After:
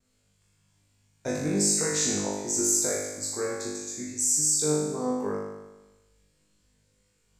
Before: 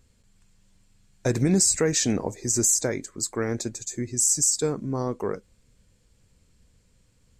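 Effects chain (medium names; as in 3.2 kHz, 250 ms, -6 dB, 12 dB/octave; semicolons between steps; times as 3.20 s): gate with hold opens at -54 dBFS; bass shelf 130 Hz -9 dB; flutter echo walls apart 3.4 m, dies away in 1.1 s; trim -8 dB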